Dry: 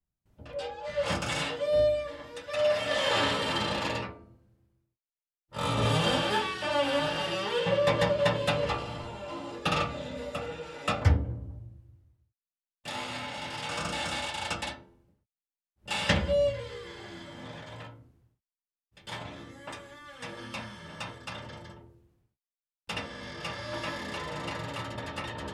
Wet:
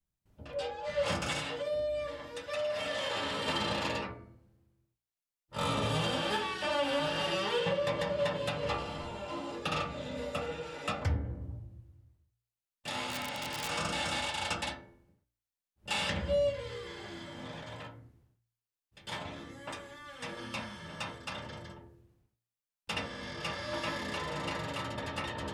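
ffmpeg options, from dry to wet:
-filter_complex "[0:a]asettb=1/sr,asplit=3[s0][s1][s2];[s0]atrim=end=1.394[s3];[s1]atrim=start=1.39:end=3.48,asetpts=PTS-STARTPTS,afade=t=in:d=0.004:c=qsin,afade=t=out:st=2.086:d=0.004:c=qsin,acompressor=threshold=0.0282:ratio=5:attack=3.2:release=140:knee=1:detection=peak[s4];[s2]atrim=start=3.476[s5];[s3][s4]acrossfade=d=0.004:c1=hsin:c2=qsin[s6];[s6][s5]acrossfade=d=0.004:c1=qsin:c2=hsin,asplit=3[s7][s8][s9];[s7]afade=t=out:st=13.05:d=0.02[s10];[s8]aeval=exprs='(mod(25.1*val(0)+1,2)-1)/25.1':c=same,afade=t=in:st=13.05:d=0.02,afade=t=out:st=13.68:d=0.02[s11];[s9]afade=t=in:st=13.68:d=0.02[s12];[s10][s11][s12]amix=inputs=3:normalize=0,bandreject=f=58.32:t=h:w=4,bandreject=f=116.64:t=h:w=4,bandreject=f=174.96:t=h:w=4,bandreject=f=233.28:t=h:w=4,bandreject=f=291.6:t=h:w=4,bandreject=f=349.92:t=h:w=4,bandreject=f=408.24:t=h:w=4,bandreject=f=466.56:t=h:w=4,bandreject=f=524.88:t=h:w=4,bandreject=f=583.2:t=h:w=4,bandreject=f=641.52:t=h:w=4,bandreject=f=699.84:t=h:w=4,bandreject=f=758.16:t=h:w=4,bandreject=f=816.48:t=h:w=4,bandreject=f=874.8:t=h:w=4,bandreject=f=933.12:t=h:w=4,bandreject=f=991.44:t=h:w=4,bandreject=f=1049.76:t=h:w=4,bandreject=f=1108.08:t=h:w=4,bandreject=f=1166.4:t=h:w=4,bandreject=f=1224.72:t=h:w=4,bandreject=f=1283.04:t=h:w=4,bandreject=f=1341.36:t=h:w=4,bandreject=f=1399.68:t=h:w=4,bandreject=f=1458:t=h:w=4,bandreject=f=1516.32:t=h:w=4,bandreject=f=1574.64:t=h:w=4,bandreject=f=1632.96:t=h:w=4,bandreject=f=1691.28:t=h:w=4,bandreject=f=1749.6:t=h:w=4,bandreject=f=1807.92:t=h:w=4,bandreject=f=1866.24:t=h:w=4,bandreject=f=1924.56:t=h:w=4,bandreject=f=1982.88:t=h:w=4,bandreject=f=2041.2:t=h:w=4,bandreject=f=2099.52:t=h:w=4,bandreject=f=2157.84:t=h:w=4,bandreject=f=2216.16:t=h:w=4,bandreject=f=2274.48:t=h:w=4,alimiter=limit=0.0841:level=0:latency=1:release=352"

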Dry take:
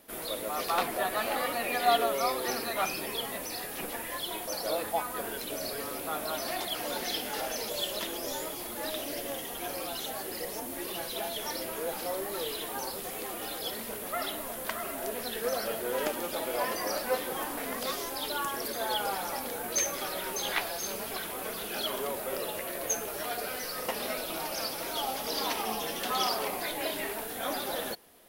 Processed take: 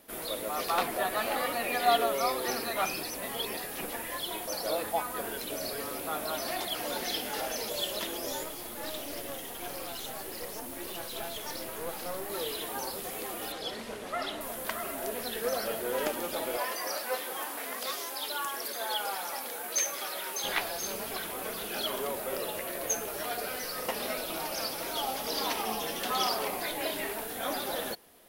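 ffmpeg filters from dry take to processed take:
-filter_complex "[0:a]asettb=1/sr,asplit=3[s0][s1][s2];[s0]atrim=end=8.434[s3];[s1]atrim=start=8.43:end=12.3,asetpts=PTS-STARTPTS,afade=t=in:d=0.004:c=qsin,afade=t=out:st=3.866:d=0.004:c=qsin,aeval=exprs='clip(val(0),-1,0.00631)':c=same[s4];[s2]atrim=start=12.296[s5];[s3][s4]acrossfade=d=0.004:c1=hsin:c2=qsin[s6];[s6][s5]acrossfade=d=0.004:c1=qsin:c2=hsin,asettb=1/sr,asplit=3[s7][s8][s9];[s7]atrim=end=13.524[s10];[s8]atrim=start=13.52:end=14.41,asetpts=PTS-STARTPTS,afade=t=in:d=0.004:c=qsin,afade=t=out:st=0.886:d=0.004:c=qsin,lowpass=6600[s11];[s9]atrim=start=14.406[s12];[s10][s11]acrossfade=d=0.004:c1=hsin:c2=qsin[s13];[s13][s12]acrossfade=d=0.004:c1=qsin:c2=hsin,asettb=1/sr,asplit=3[s14][s15][s16];[s14]atrim=end=16.574[s17];[s15]atrim=start=16.57:end=20.44,asetpts=PTS-STARTPTS,afade=t=in:d=0.004:c=qsin,afade=t=out:st=3.866:d=0.004:c=qsin,highpass=f=710:p=1[s18];[s16]atrim=start=20.436[s19];[s17][s18]acrossfade=d=0.004:c1=hsin:c2=qsin[s20];[s20][s19]acrossfade=d=0.004:c1=qsin:c2=hsin,asplit=3[s21][s22][s23];[s21]atrim=end=3.032[s24];[s22]atrim=start=3.028:end=3.572,asetpts=PTS-STARTPTS,areverse[s25];[s23]atrim=start=3.568[s26];[s24][s25]acrossfade=d=0.004:c1=hsin:c2=hsin[s27];[s27][s26]acrossfade=d=0.004:c1=hsin:c2=hsin"

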